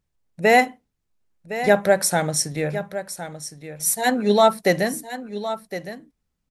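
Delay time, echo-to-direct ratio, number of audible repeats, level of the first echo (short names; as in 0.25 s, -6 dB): 1.062 s, -12.0 dB, 1, -12.0 dB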